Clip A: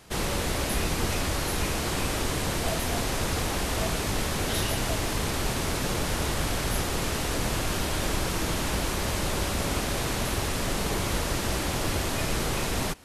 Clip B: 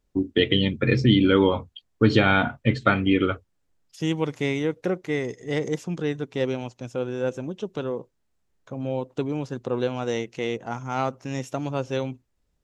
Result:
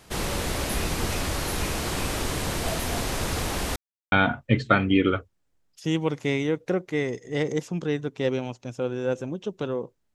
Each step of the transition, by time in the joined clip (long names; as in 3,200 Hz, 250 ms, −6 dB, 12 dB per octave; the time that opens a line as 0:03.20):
clip A
0:03.76–0:04.12: silence
0:04.12: continue with clip B from 0:02.28